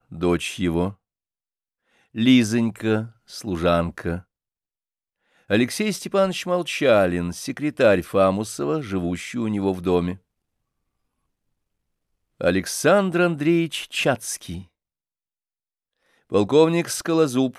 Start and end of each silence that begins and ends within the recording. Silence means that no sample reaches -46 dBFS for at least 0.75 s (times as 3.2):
0.94–2.15
4.22–5.5
10.18–12.4
14.65–16.3